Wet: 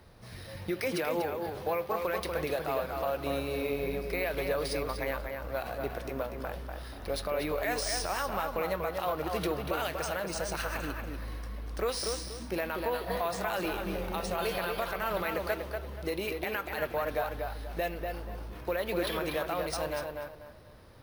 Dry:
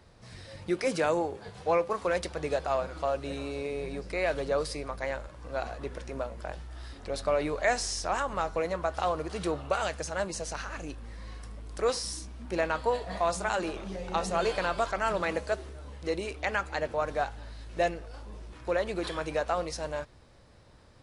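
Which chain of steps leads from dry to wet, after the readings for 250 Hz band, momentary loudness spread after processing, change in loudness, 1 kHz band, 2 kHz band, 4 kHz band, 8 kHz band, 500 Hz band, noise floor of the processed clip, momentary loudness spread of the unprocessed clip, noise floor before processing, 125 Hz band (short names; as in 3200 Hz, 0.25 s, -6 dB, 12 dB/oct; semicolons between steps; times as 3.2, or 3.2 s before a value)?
-0.5 dB, 8 LU, -2.0 dB, -2.5 dB, -1.0 dB, +0.5 dB, -1.5 dB, -2.0 dB, -47 dBFS, 14 LU, -55 dBFS, 0.0 dB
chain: LPF 7800 Hz; dynamic EQ 2900 Hz, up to +5 dB, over -45 dBFS, Q 0.91; compressor 2.5:1, threshold -30 dBFS, peak gain reduction 7.5 dB; limiter -23.5 dBFS, peak gain reduction 10 dB; tape echo 0.241 s, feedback 32%, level -3 dB, low-pass 2900 Hz; careless resampling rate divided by 3×, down filtered, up hold; gain +1.5 dB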